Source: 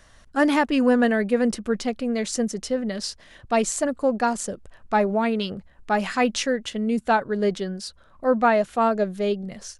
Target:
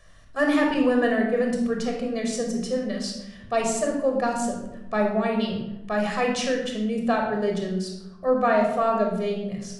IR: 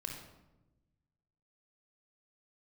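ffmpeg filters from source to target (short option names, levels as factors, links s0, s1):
-filter_complex "[0:a]asettb=1/sr,asplit=3[s0][s1][s2];[s0]atrim=end=0.744[s3];[s1]atrim=start=0.74:end=1.61,asetpts=PTS-STARTPTS,afade=t=in:d=0.004:c=qsin,afade=t=out:st=0.866:d=0.004:c=qsin,agate=range=0.0224:threshold=0.1:ratio=3:detection=peak[s4];[s2]atrim=start=1.606[s5];[s3][s4]acrossfade=d=0.004:c1=hsin:c2=qsin[s6];[s6][s5]acrossfade=d=0.004:c1=qsin:c2=hsin[s7];[1:a]atrim=start_sample=2205,asetrate=48510,aresample=44100[s8];[s7][s8]afir=irnorm=-1:irlink=0"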